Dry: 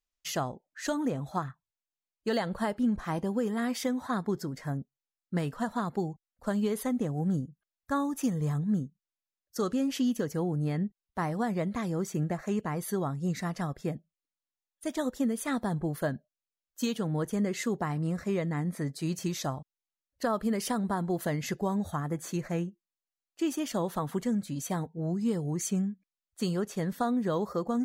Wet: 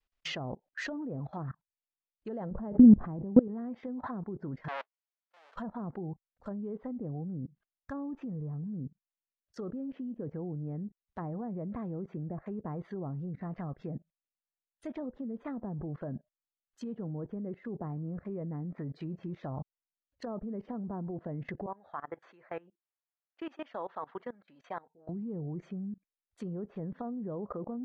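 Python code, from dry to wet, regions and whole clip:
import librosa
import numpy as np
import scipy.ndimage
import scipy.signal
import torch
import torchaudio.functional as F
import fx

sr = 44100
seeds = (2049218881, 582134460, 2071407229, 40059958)

y = fx.chain(x, sr, fx.low_shelf(hz=340.0, db=8.0),
    fx.pre_swell(db_per_s=32.0), at=(2.51, 3.48))
y = fx.chain(y, sr, fx.halfwave_hold(),
    fx.highpass(hz=600.0, slope=24),
    fx.auto_swell(attack_ms=751.0), at=(4.68, 5.56))
y = fx.chain(y, sr, fx.highpass(hz=800.0, slope=12),
    fx.spacing_loss(db_at_10k=44), at=(21.66, 25.09))
y = fx.env_lowpass_down(y, sr, base_hz=610.0, full_db=-27.0)
y = scipy.signal.sosfilt(scipy.signal.butter(2, 3200.0, 'lowpass', fs=sr, output='sos'), y)
y = fx.level_steps(y, sr, step_db=23)
y = y * 10.0 ** (9.0 / 20.0)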